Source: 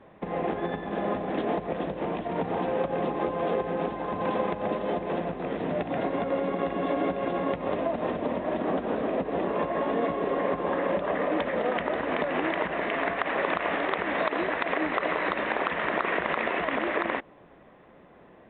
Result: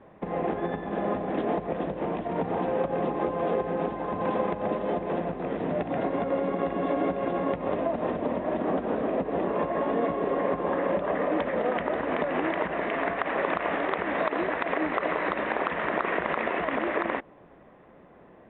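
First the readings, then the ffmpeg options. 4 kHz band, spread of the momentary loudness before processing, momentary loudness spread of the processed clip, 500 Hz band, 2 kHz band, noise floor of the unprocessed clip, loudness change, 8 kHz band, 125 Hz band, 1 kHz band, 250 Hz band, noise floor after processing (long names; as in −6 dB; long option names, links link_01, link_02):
−4.0 dB, 4 LU, 3 LU, +0.5 dB, −1.5 dB, −53 dBFS, 0.0 dB, can't be measured, +1.0 dB, 0.0 dB, +1.0 dB, −53 dBFS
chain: -af "aemphasis=mode=reproduction:type=75fm"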